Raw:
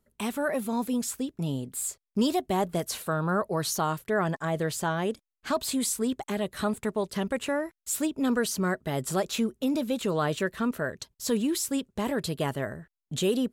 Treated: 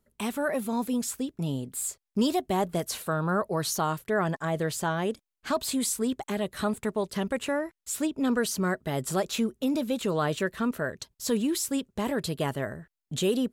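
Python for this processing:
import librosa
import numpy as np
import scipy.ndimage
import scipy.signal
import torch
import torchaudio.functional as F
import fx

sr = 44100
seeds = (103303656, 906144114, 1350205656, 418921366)

y = fx.high_shelf(x, sr, hz=10000.0, db=-7.0, at=(7.59, 8.38))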